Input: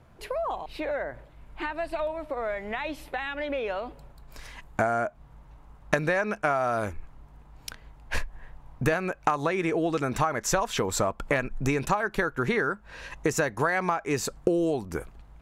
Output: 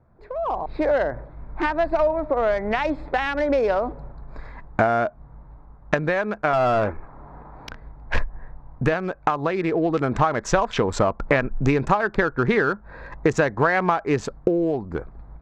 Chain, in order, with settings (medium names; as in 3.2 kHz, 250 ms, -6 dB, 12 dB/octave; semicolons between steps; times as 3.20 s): local Wiener filter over 15 samples; level rider gain up to 15 dB; distance through air 130 m; 6.53–7.69 s: overdrive pedal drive 18 dB, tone 1.5 kHz, clips at -8.5 dBFS; trim -3.5 dB